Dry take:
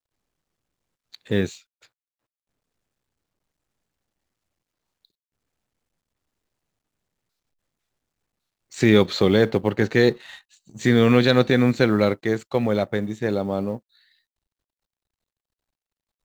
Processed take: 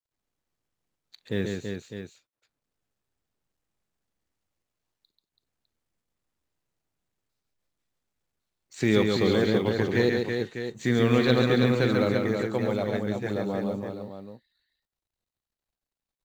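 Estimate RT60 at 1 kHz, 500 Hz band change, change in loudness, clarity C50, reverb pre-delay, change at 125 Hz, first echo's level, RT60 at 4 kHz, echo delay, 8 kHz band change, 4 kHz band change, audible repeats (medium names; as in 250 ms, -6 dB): no reverb, -4.5 dB, -5.0 dB, no reverb, no reverb, -4.0 dB, -16.5 dB, no reverb, 41 ms, -4.5 dB, -4.5 dB, 4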